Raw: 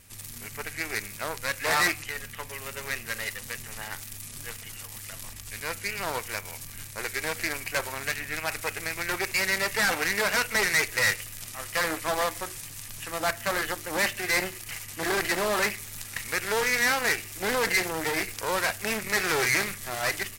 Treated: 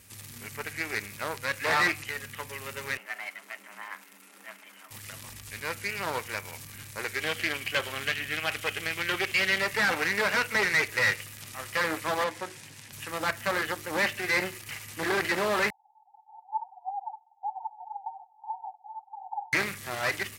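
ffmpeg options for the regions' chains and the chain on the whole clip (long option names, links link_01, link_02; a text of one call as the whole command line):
ffmpeg -i in.wav -filter_complex "[0:a]asettb=1/sr,asplit=3[link_01][link_02][link_03];[link_01]atrim=end=2.974[link_04];[link_02]atrim=start=2.97:end=4.91,asetpts=PTS-STARTPTS,afade=type=in:duration=0.004:curve=qsin,afade=type=out:start_time=1.936:duration=0.004:curve=qsin,acrossover=split=390 2100:gain=0.126 1 0.158[link_05][link_06][link_07];[link_05][link_06][link_07]amix=inputs=3:normalize=0,afreqshift=180[link_08];[link_03]atrim=start=4.906[link_09];[link_04][link_08]acrossfade=duration=0.004:curve1=hsin:curve2=qsin[link_10];[link_10][link_09]acrossfade=duration=0.004:curve1=qsin:curve2=hsin,asettb=1/sr,asplit=3[link_11][link_12][link_13];[link_11]atrim=end=7.204[link_14];[link_12]atrim=start=7.2:end=9.61,asetpts=PTS-STARTPTS,afade=type=in:duration=0.004:curve=qsin,afade=type=out:start_time=2.406:duration=0.004:curve=qsin,equalizer=frequency=3100:width_type=o:width=0.32:gain=12,bandreject=frequency=930:width=9.3[link_15];[link_13]atrim=start=9.606[link_16];[link_14][link_15]acrossfade=duration=0.004:curve1=hsin:curve2=qsin[link_17];[link_17][link_16]acrossfade=duration=0.004:curve1=qsin:curve2=hsin,asettb=1/sr,asplit=3[link_18][link_19][link_20];[link_18]atrim=end=12.244[link_21];[link_19]atrim=start=12.24:end=12.93,asetpts=PTS-STARTPTS,afade=type=in:duration=0.004:curve=qsin,afade=type=out:start_time=0.686:duration=0.004:curve=qsin,highpass=130,aemphasis=mode=reproduction:type=50fm,bandreject=frequency=1200:width=9.1[link_22];[link_20]atrim=start=12.926[link_23];[link_21][link_22]acrossfade=duration=0.004:curve1=hsin:curve2=qsin[link_24];[link_24][link_23]acrossfade=duration=0.004:curve1=qsin:curve2=hsin,asettb=1/sr,asplit=3[link_25][link_26][link_27];[link_25]atrim=end=15.704[link_28];[link_26]atrim=start=15.7:end=19.53,asetpts=PTS-STARTPTS,afade=type=in:duration=0.004:curve=qsin,afade=type=out:start_time=3.826:duration=0.004:curve=qsin,aphaser=in_gain=1:out_gain=1:delay=4.7:decay=0.67:speed=1.7:type=sinusoidal,asuperpass=centerf=800:order=12:qfactor=4.3,aecho=1:1:2.1:0.45,atrim=end_sample=168903[link_29];[link_27]atrim=start=19.526[link_30];[link_28][link_29]acrossfade=duration=0.004:curve1=hsin:curve2=qsin[link_31];[link_31][link_30]acrossfade=duration=0.004:curve1=qsin:curve2=hsin,bandreject=frequency=690:width=12,acrossover=split=4400[link_32][link_33];[link_33]acompressor=threshold=-41dB:ratio=4:attack=1:release=60[link_34];[link_32][link_34]amix=inputs=2:normalize=0,highpass=64" out.wav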